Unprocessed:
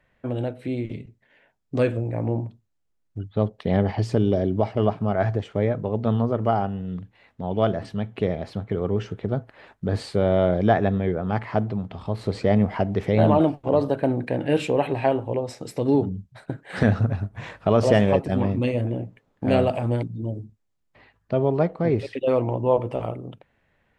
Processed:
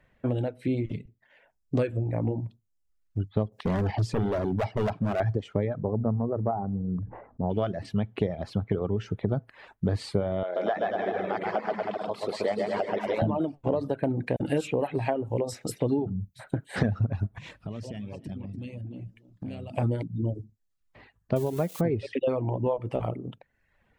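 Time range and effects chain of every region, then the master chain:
3.52–5.20 s: high-pass 76 Hz + upward compressor, threshold -36 dBFS + hard clipper -23 dBFS
5.82–7.50 s: low-pass 1.1 kHz 24 dB/octave + decay stretcher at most 65 dB/s
10.43–13.22 s: high-pass 500 Hz + bouncing-ball echo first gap 130 ms, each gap 0.8×, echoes 7, each echo -2 dB
14.36–16.76 s: treble shelf 5.7 kHz +8.5 dB + bands offset in time highs, lows 40 ms, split 3.4 kHz
17.38–19.78 s: high-order bell 830 Hz -9 dB 2.6 oct + compression 5:1, threshold -37 dBFS + delay 291 ms -13 dB
21.36–21.81 s: zero-crossing glitches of -23.5 dBFS + peaking EQ 5.1 kHz -4 dB 0.3 oct
whole clip: compression 6:1, threshold -24 dBFS; bass shelf 400 Hz +4 dB; reverb removal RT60 0.77 s

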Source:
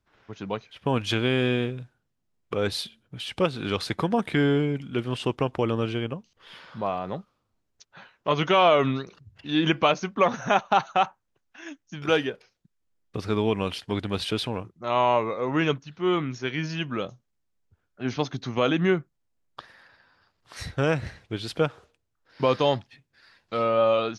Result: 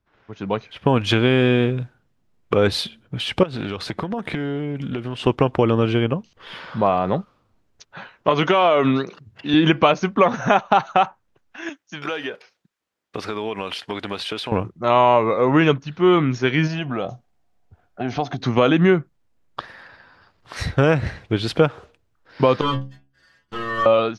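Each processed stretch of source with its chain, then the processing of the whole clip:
3.43–5.27 s: compression 16:1, threshold -33 dBFS + loudspeaker Doppler distortion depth 0.15 ms
8.29–9.54 s: high-pass 170 Hz + compression 2.5:1, threshold -21 dBFS
11.69–14.52 s: high-pass 730 Hz 6 dB/octave + compression 10:1, threshold -33 dBFS
16.67–18.40 s: compression 3:1, threshold -36 dBFS + peaking EQ 720 Hz +14.5 dB 0.32 oct
22.61–23.86 s: comb filter that takes the minimum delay 0.64 ms + inharmonic resonator 65 Hz, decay 0.46 s, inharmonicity 0.008
whole clip: compression 2:1, threshold -25 dBFS; treble shelf 4.5 kHz -10 dB; level rider gain up to 10.5 dB; trim +1.5 dB

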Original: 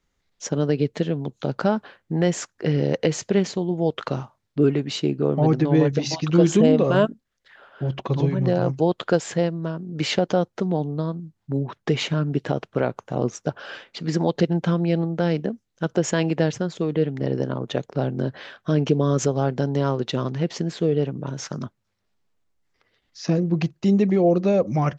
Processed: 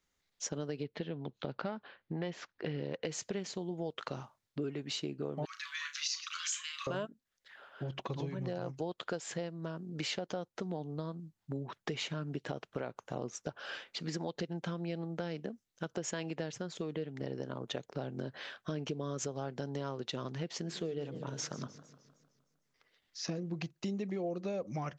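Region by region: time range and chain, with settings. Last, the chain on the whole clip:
0.83–3.05 s: self-modulated delay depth 0.066 ms + low-pass 4.2 kHz 24 dB/octave
5.45–6.87 s: steep high-pass 1.1 kHz 96 dB/octave + treble shelf 2.6 kHz +8 dB + flutter echo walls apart 6.1 m, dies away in 0.21 s
20.58–23.30 s: hum notches 50/100/150/200/250/300/350/400 Hz + modulated delay 153 ms, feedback 55%, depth 175 cents, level -17 dB
whole clip: tilt EQ +1.5 dB/octave; compression 4:1, threshold -29 dBFS; trim -6.5 dB

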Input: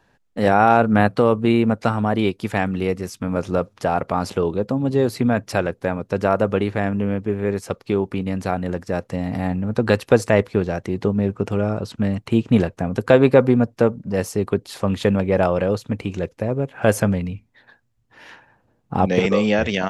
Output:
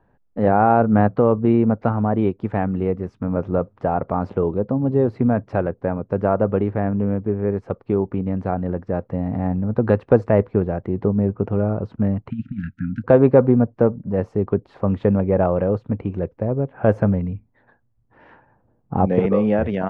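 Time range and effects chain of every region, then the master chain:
12.30–13.04 s: bass shelf 150 Hz -11 dB + compressor with a negative ratio -22 dBFS, ratio -0.5 + brick-wall FIR band-stop 290–1300 Hz
whole clip: low-pass 1.1 kHz 12 dB/octave; bass shelf 110 Hz +4 dB

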